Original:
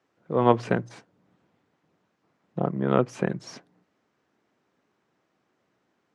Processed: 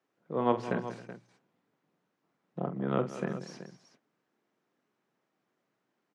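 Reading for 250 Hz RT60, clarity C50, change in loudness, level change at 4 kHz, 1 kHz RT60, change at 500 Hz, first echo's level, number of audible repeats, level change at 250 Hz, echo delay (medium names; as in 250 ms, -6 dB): no reverb, no reverb, -7.5 dB, -7.0 dB, no reverb, -7.5 dB, -10.0 dB, 4, -6.5 dB, 45 ms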